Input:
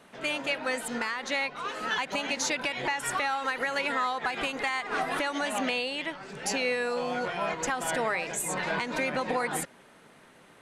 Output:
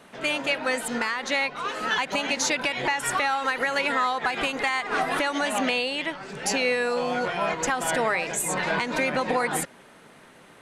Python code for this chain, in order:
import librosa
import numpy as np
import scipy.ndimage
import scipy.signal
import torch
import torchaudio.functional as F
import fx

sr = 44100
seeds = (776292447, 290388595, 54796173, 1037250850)

y = x * 10.0 ** (4.5 / 20.0)